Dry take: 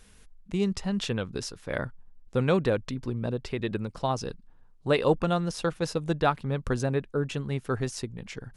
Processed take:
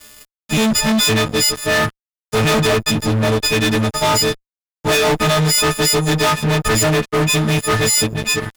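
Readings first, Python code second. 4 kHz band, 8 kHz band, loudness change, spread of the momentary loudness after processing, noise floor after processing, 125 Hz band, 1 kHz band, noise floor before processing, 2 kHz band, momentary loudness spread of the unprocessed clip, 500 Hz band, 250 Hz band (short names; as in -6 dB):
+21.5 dB, +25.0 dB, +13.5 dB, 4 LU, under -85 dBFS, +11.5 dB, +12.5 dB, -55 dBFS, +18.0 dB, 10 LU, +10.0 dB, +11.0 dB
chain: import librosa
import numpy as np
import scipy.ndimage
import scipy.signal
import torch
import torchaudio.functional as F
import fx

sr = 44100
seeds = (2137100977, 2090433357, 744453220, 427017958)

y = fx.freq_snap(x, sr, grid_st=6)
y = fx.fuzz(y, sr, gain_db=35.0, gate_db=-44.0)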